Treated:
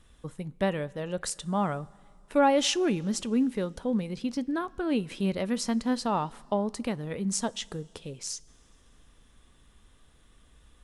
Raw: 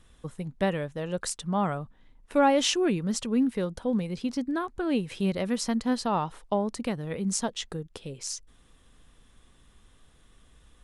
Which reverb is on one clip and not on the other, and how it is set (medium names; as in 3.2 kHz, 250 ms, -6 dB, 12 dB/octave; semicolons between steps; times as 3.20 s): two-slope reverb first 0.21 s, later 2.6 s, from -18 dB, DRR 16.5 dB; trim -1 dB